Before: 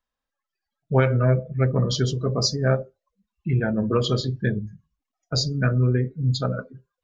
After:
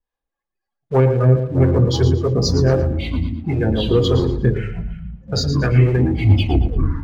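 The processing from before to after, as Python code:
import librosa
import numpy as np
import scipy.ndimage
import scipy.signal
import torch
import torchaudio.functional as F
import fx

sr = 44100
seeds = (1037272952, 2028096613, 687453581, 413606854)

y = fx.tape_stop_end(x, sr, length_s=0.91)
y = fx.high_shelf(y, sr, hz=2600.0, db=-11.5)
y = fx.notch(y, sr, hz=1300.0, q=7.0)
y = y + 0.44 * np.pad(y, (int(2.4 * sr / 1000.0), 0))[:len(y)]
y = fx.leveller(y, sr, passes=1)
y = fx.harmonic_tremolo(y, sr, hz=3.8, depth_pct=70, crossover_hz=460.0)
y = fx.echo_pitch(y, sr, ms=131, semitones=-7, count=3, db_per_echo=-6.0)
y = fx.echo_feedback(y, sr, ms=114, feedback_pct=30, wet_db=-10.5)
y = y * librosa.db_to_amplitude(5.5)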